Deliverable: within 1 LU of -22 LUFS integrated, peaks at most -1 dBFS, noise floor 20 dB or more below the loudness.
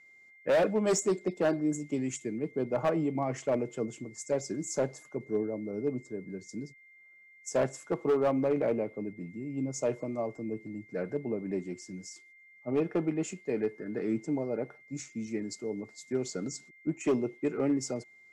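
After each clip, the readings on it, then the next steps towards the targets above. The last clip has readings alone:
clipped 0.7%; flat tops at -21.0 dBFS; steady tone 2100 Hz; tone level -55 dBFS; loudness -32.5 LUFS; peak -21.0 dBFS; loudness target -22.0 LUFS
-> clip repair -21 dBFS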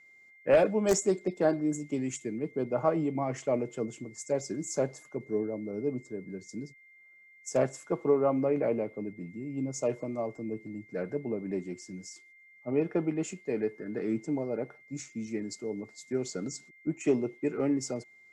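clipped 0.0%; steady tone 2100 Hz; tone level -55 dBFS
-> notch 2100 Hz, Q 30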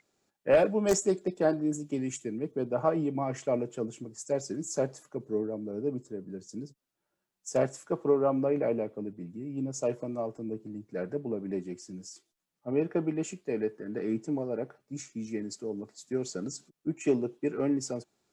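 steady tone none; loudness -32.0 LUFS; peak -12.0 dBFS; loudness target -22.0 LUFS
-> gain +10 dB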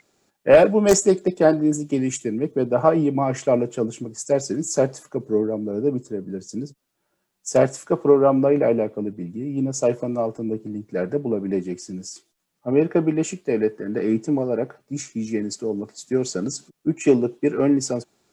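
loudness -22.0 LUFS; peak -2.0 dBFS; noise floor -75 dBFS

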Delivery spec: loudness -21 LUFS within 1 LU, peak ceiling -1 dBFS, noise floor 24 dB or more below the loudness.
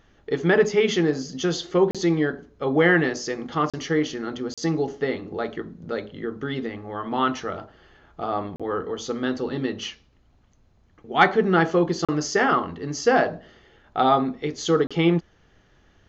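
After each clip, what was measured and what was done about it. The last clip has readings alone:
dropouts 6; longest dropout 36 ms; loudness -23.5 LUFS; peak -4.5 dBFS; loudness target -21.0 LUFS
-> interpolate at 1.91/3.7/4.54/8.56/12.05/14.87, 36 ms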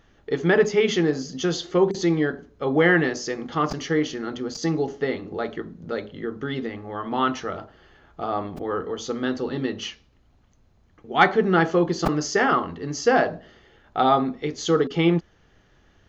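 dropouts 0; loudness -23.5 LUFS; peak -4.5 dBFS; loudness target -21.0 LUFS
-> gain +2.5 dB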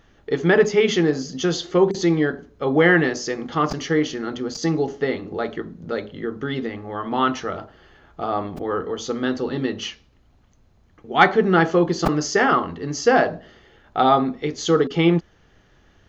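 loudness -21.0 LUFS; peak -2.0 dBFS; noise floor -57 dBFS

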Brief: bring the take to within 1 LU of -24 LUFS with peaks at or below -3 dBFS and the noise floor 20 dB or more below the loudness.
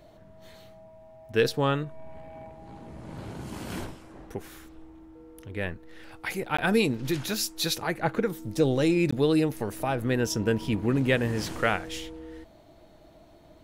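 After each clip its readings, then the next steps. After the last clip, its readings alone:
dropouts 2; longest dropout 15 ms; loudness -27.5 LUFS; peak -9.5 dBFS; loudness target -24.0 LUFS
-> interpolate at 6.57/9.11, 15 ms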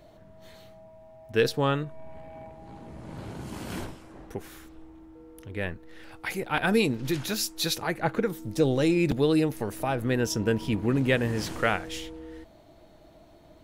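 dropouts 0; loudness -27.5 LUFS; peak -9.5 dBFS; loudness target -24.0 LUFS
-> gain +3.5 dB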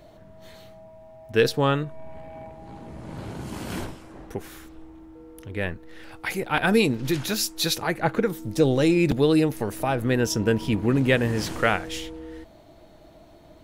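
loudness -24.0 LUFS; peak -6.0 dBFS; noise floor -51 dBFS

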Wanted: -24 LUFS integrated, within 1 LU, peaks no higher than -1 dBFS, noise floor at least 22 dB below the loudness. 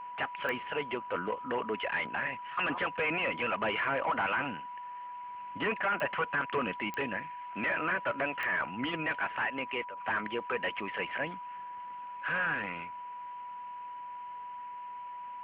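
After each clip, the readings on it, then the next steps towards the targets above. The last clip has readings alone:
clicks 4; steady tone 980 Hz; tone level -40 dBFS; loudness -34.0 LUFS; peak -17.5 dBFS; loudness target -24.0 LUFS
-> de-click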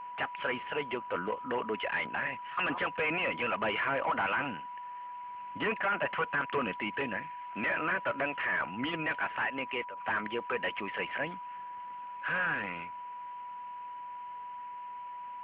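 clicks 0; steady tone 980 Hz; tone level -40 dBFS
-> notch 980 Hz, Q 30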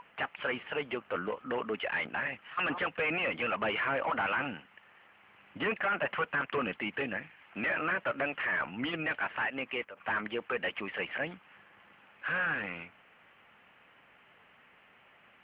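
steady tone none; loudness -33.5 LUFS; peak -19.0 dBFS; loudness target -24.0 LUFS
-> gain +9.5 dB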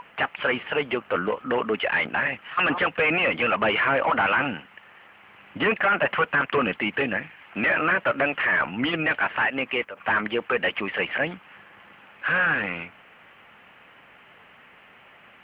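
loudness -24.0 LUFS; peak -9.5 dBFS; noise floor -52 dBFS

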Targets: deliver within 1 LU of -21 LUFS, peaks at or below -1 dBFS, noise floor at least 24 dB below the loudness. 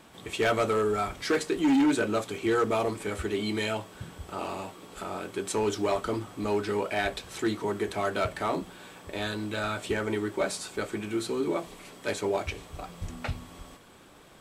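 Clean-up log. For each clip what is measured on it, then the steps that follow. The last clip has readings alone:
clipped 1.3%; flat tops at -19.5 dBFS; loudness -30.0 LUFS; peak -19.5 dBFS; loudness target -21.0 LUFS
-> clip repair -19.5 dBFS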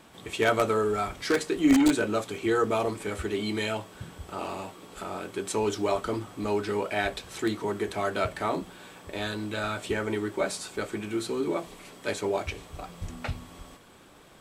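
clipped 0.0%; loudness -29.0 LUFS; peak -10.5 dBFS; loudness target -21.0 LUFS
-> gain +8 dB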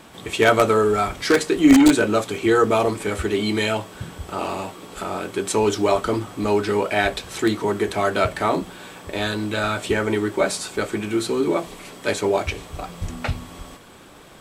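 loudness -21.0 LUFS; peak -2.5 dBFS; noise floor -45 dBFS

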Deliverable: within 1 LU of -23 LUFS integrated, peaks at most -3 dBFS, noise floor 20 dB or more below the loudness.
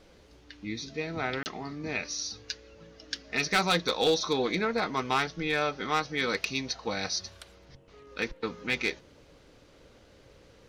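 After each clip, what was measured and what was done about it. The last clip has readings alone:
clipped 0.2%; flat tops at -18.0 dBFS; dropouts 1; longest dropout 29 ms; loudness -30.0 LUFS; peak -18.0 dBFS; loudness target -23.0 LUFS
-> clip repair -18 dBFS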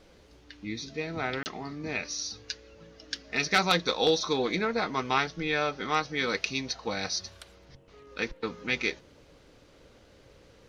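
clipped 0.0%; dropouts 1; longest dropout 29 ms
-> interpolate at 1.43, 29 ms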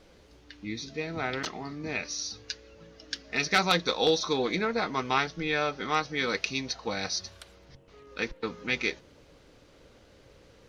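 dropouts 0; loudness -30.0 LUFS; peak -9.0 dBFS; loudness target -23.0 LUFS
-> gain +7 dB; limiter -3 dBFS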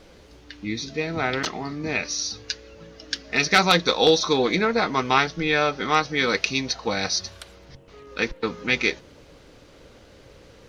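loudness -23.0 LUFS; peak -3.0 dBFS; noise floor -50 dBFS

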